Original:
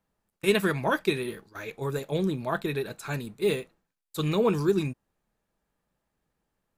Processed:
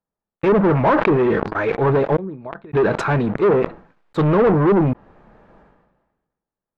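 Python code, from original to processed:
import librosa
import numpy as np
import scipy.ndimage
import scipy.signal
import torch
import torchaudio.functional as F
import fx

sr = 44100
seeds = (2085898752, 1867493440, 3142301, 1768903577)

y = fx.env_lowpass_down(x, sr, base_hz=740.0, full_db=-19.5)
y = fx.gate_flip(y, sr, shuts_db=-27.0, range_db=-33, at=(2.15, 2.73), fade=0.02)
y = fx.dynamic_eq(y, sr, hz=940.0, q=1.8, threshold_db=-45.0, ratio=4.0, max_db=4)
y = fx.leveller(y, sr, passes=5)
y = scipy.signal.sosfilt(scipy.signal.butter(2, 1400.0, 'lowpass', fs=sr, output='sos'), y)
y = fx.low_shelf(y, sr, hz=180.0, db=-6.0)
y = fx.sustainer(y, sr, db_per_s=45.0)
y = y * 10.0 ** (2.5 / 20.0)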